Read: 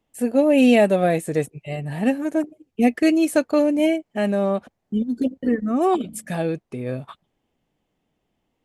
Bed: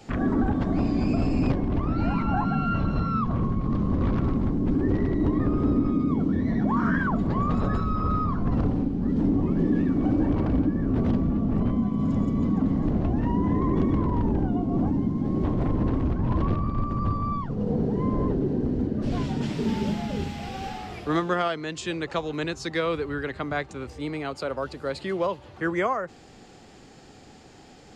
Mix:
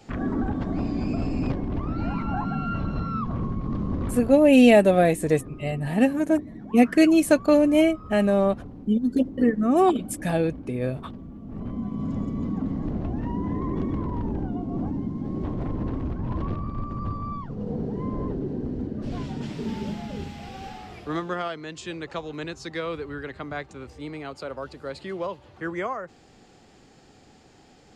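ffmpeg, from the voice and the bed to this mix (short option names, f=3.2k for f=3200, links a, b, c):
-filter_complex "[0:a]adelay=3950,volume=0.5dB[a];[1:a]volume=9dB,afade=t=out:st=3.95:d=0.5:silence=0.211349,afade=t=in:st=11.42:d=0.51:silence=0.251189[b];[a][b]amix=inputs=2:normalize=0"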